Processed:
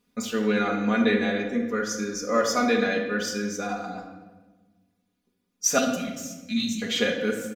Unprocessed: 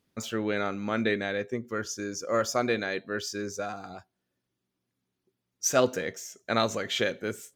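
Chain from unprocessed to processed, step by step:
0:05.78–0:06.82: elliptic band-stop filter 260–2,600 Hz, stop band 40 dB
comb filter 4.1 ms, depth 87%
rectangular room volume 1,000 cubic metres, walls mixed, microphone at 1.3 metres

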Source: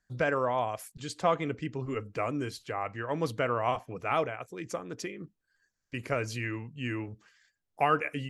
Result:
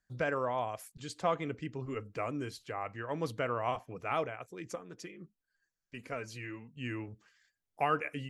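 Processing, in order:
0:04.75–0:06.77: flanger 1.5 Hz, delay 3.8 ms, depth 2.8 ms, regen +34%
level −4.5 dB

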